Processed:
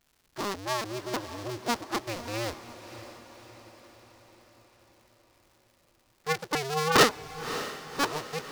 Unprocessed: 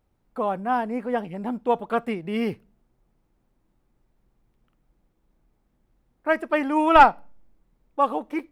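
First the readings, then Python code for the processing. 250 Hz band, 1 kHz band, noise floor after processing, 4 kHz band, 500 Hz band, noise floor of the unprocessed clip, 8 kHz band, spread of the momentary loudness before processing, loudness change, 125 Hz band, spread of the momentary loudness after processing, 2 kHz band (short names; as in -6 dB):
-9.0 dB, -10.0 dB, -68 dBFS, +8.5 dB, -6.0 dB, -71 dBFS, n/a, 15 LU, -6.5 dB, +3.0 dB, 22 LU, -2.5 dB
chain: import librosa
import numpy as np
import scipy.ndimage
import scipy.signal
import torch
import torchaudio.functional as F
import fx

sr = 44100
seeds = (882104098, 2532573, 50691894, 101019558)

p1 = fx.cycle_switch(x, sr, every=2, mode='inverted')
p2 = fx.peak_eq(p1, sr, hz=5000.0, db=8.5, octaves=1.2)
p3 = fx.dmg_crackle(p2, sr, seeds[0], per_s=280.0, level_db=-44.0)
p4 = p3 + fx.echo_diffused(p3, sr, ms=576, feedback_pct=56, wet_db=-12.5, dry=0)
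y = p4 * 10.0 ** (-8.0 / 20.0)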